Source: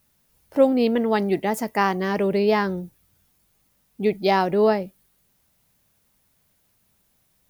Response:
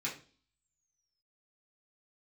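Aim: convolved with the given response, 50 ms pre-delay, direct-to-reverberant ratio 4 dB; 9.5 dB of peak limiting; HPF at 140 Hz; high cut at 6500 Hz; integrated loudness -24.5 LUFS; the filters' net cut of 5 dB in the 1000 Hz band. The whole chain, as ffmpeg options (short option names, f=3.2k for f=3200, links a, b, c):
-filter_complex "[0:a]highpass=140,lowpass=6.5k,equalizer=f=1k:t=o:g=-6.5,alimiter=limit=-16.5dB:level=0:latency=1,asplit=2[a][b];[1:a]atrim=start_sample=2205,adelay=50[c];[b][c]afir=irnorm=-1:irlink=0,volume=-7dB[d];[a][d]amix=inputs=2:normalize=0,volume=0.5dB"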